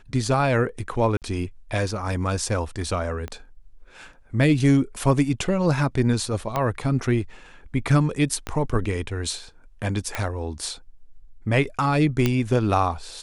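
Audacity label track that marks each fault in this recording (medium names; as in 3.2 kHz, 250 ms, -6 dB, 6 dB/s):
1.170000	1.220000	dropout 48 ms
3.280000	3.280000	pop -19 dBFS
6.560000	6.560000	pop -11 dBFS
8.470000	8.470000	pop -14 dBFS
10.150000	10.150000	pop -11 dBFS
12.260000	12.260000	pop -7 dBFS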